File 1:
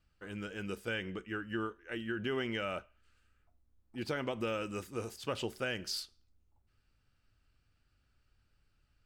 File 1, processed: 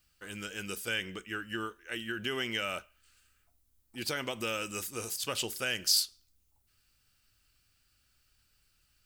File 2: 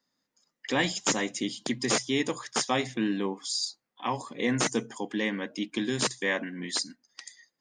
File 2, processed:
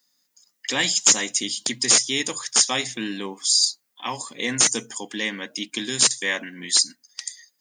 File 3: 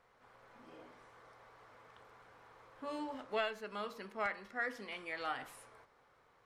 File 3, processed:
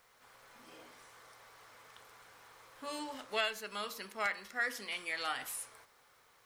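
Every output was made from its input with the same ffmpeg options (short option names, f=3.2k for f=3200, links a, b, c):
-af "crystalizer=i=7:c=0,volume=-2.5dB"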